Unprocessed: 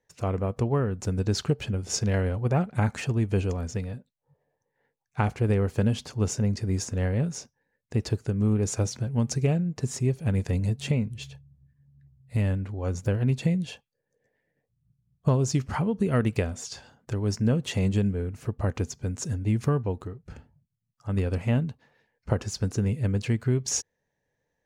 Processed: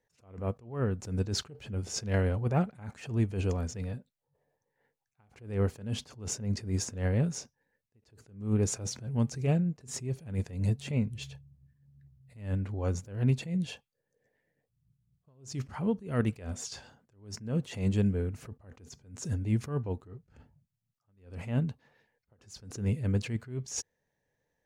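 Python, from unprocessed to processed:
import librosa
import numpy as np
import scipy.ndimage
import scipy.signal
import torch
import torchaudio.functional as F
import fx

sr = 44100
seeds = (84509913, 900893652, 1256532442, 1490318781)

y = fx.attack_slew(x, sr, db_per_s=130.0)
y = y * 10.0 ** (-1.5 / 20.0)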